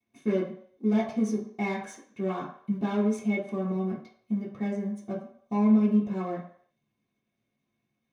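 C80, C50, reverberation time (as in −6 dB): 11.0 dB, 7.5 dB, 0.60 s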